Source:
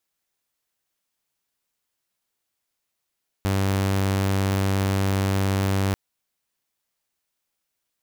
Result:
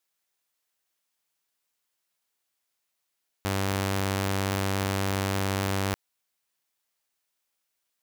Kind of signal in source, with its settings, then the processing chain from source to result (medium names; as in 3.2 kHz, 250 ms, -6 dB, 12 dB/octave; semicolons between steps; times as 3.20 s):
tone saw 97.2 Hz -17.5 dBFS 2.49 s
bass shelf 360 Hz -8 dB